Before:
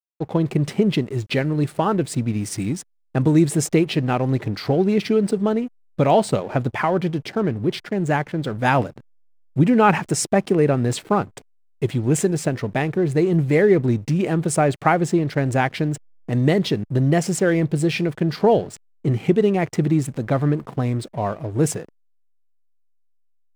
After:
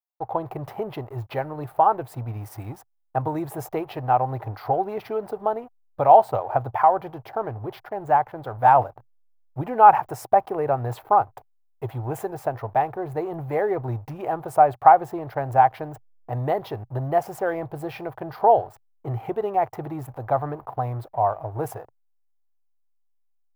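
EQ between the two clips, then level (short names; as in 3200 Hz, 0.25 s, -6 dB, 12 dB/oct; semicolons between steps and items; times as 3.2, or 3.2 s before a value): EQ curve 120 Hz 0 dB, 180 Hz -18 dB, 540 Hz +1 dB, 780 Hz +14 dB, 2100 Hz -8 dB, 3700 Hz -12 dB, 8400 Hz -17 dB, 13000 Hz +5 dB; -5.0 dB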